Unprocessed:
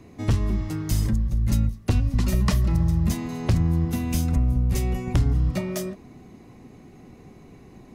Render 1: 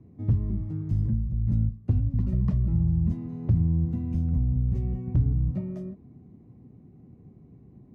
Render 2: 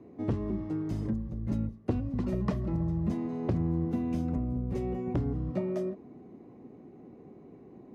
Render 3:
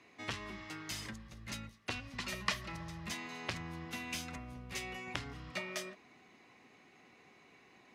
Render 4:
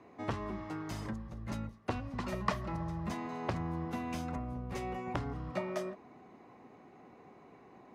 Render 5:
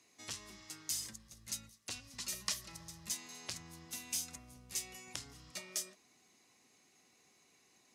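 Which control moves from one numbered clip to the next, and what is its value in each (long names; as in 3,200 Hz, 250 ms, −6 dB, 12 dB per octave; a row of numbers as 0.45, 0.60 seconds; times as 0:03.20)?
resonant band-pass, frequency: 120, 380, 2,400, 960, 7,000 Hertz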